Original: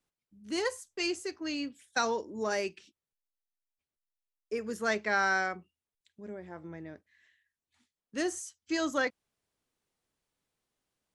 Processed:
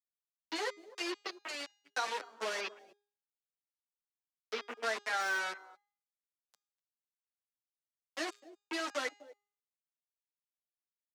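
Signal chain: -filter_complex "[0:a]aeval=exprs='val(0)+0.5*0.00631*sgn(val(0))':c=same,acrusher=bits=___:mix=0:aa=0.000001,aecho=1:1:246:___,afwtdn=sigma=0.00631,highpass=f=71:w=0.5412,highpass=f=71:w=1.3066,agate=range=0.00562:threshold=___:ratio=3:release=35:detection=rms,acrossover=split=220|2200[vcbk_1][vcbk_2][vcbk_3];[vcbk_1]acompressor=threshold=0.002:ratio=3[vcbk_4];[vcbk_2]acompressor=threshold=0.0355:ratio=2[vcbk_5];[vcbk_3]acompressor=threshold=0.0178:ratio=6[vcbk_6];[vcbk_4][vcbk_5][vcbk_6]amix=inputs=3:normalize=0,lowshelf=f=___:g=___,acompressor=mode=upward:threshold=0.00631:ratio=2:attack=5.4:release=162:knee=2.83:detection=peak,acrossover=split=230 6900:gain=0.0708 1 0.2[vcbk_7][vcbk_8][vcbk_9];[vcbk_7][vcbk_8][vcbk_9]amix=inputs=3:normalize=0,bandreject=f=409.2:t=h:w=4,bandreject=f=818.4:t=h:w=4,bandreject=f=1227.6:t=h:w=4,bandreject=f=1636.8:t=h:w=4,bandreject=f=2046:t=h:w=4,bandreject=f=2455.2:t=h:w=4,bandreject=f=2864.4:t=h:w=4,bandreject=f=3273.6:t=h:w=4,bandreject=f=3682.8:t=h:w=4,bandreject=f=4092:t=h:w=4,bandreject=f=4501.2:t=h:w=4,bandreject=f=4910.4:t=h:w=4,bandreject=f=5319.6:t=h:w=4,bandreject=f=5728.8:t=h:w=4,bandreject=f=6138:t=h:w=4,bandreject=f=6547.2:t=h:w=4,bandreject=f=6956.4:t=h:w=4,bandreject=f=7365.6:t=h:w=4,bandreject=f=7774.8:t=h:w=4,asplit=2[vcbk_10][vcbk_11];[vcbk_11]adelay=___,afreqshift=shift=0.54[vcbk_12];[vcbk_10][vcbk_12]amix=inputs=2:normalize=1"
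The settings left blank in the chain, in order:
4, 0.112, 0.00126, 360, -8, 8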